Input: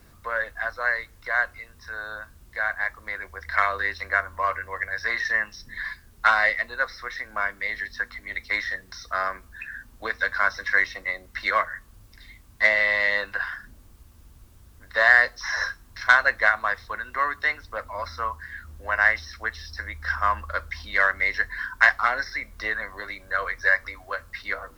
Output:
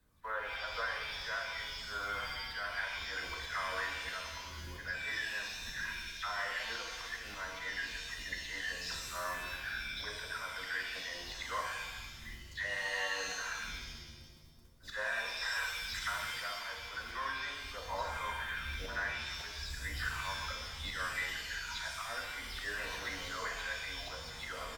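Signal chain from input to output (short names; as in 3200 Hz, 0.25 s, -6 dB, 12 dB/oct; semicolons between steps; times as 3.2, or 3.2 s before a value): spectral delay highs early, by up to 0.169 s; de-hum 252.8 Hz, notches 3; spectral gain 4.39–4.75, 420–6100 Hz -24 dB; gate -48 dBFS, range -18 dB; compressor 8:1, threshold -35 dBFS, peak gain reduction 22.5 dB; auto swell 0.104 s; pitch shift -1 st; shimmer reverb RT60 1.2 s, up +7 st, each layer -2 dB, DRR 1.5 dB; gain -1.5 dB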